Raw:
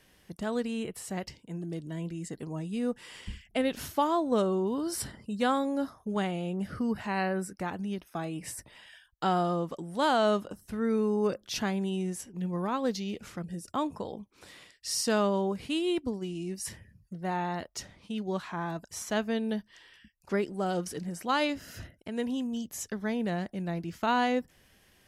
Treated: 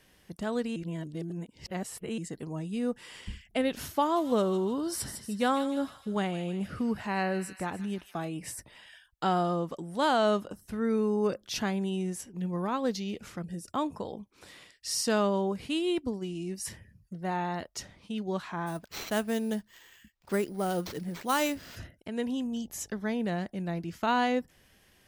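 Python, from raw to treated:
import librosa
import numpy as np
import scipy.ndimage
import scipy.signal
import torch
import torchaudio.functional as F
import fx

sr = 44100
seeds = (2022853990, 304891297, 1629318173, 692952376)

y = fx.echo_wet_highpass(x, sr, ms=154, feedback_pct=52, hz=2300.0, wet_db=-7.0, at=(4.15, 8.27), fade=0.02)
y = fx.sample_hold(y, sr, seeds[0], rate_hz=9900.0, jitter_pct=0, at=(18.66, 21.75), fade=0.02)
y = fx.dmg_buzz(y, sr, base_hz=50.0, harmonics=17, level_db=-62.0, tilt_db=-4, odd_only=False, at=(22.39, 22.98), fade=0.02)
y = fx.edit(y, sr, fx.reverse_span(start_s=0.76, length_s=1.42), tone=tone)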